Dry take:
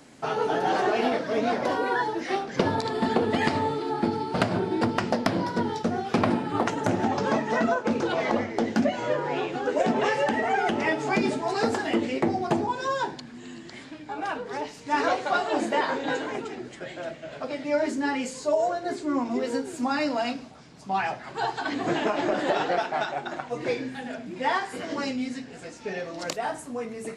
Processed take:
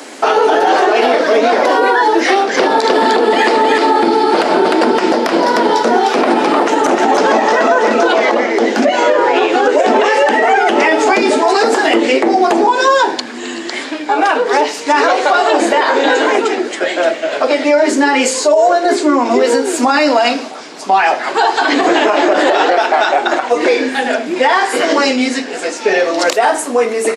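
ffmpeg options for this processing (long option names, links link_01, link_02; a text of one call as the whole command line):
ffmpeg -i in.wav -filter_complex "[0:a]asplit=3[link_01][link_02][link_03];[link_01]afade=type=out:start_time=2.56:duration=0.02[link_04];[link_02]aecho=1:1:305:0.562,afade=type=in:start_time=2.56:duration=0.02,afade=type=out:start_time=8.21:duration=0.02[link_05];[link_03]afade=type=in:start_time=8.21:duration=0.02[link_06];[link_04][link_05][link_06]amix=inputs=3:normalize=0,highpass=frequency=310:width=0.5412,highpass=frequency=310:width=1.3066,acompressor=threshold=-28dB:ratio=2.5,alimiter=level_in=23.5dB:limit=-1dB:release=50:level=0:latency=1,volume=-1.5dB" out.wav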